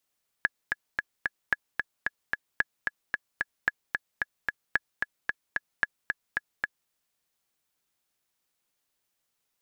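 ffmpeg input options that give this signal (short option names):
-f lavfi -i "aevalsrc='pow(10,(-9.5-4*gte(mod(t,4*60/223),60/223))/20)*sin(2*PI*1690*mod(t,60/223))*exp(-6.91*mod(t,60/223)/0.03)':d=6.45:s=44100"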